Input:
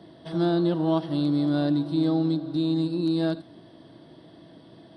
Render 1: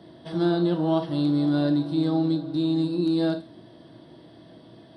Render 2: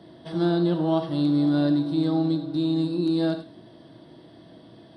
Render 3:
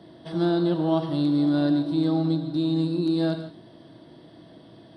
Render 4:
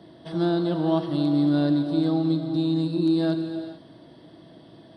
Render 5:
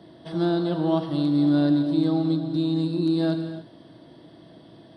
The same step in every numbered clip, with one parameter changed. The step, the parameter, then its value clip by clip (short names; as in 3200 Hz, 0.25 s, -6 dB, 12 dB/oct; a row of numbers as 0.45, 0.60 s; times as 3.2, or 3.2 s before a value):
non-linear reverb, gate: 80, 120, 190, 470, 310 ms